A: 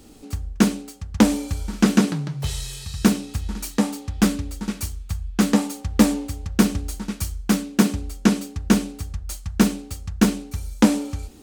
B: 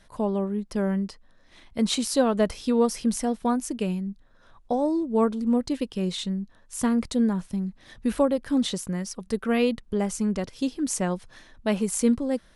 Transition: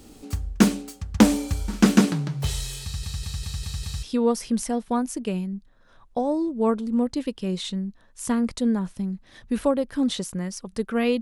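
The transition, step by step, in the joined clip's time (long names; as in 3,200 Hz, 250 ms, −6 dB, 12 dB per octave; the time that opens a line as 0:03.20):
A
0:02.83: stutter in place 0.20 s, 6 plays
0:04.03: continue with B from 0:02.57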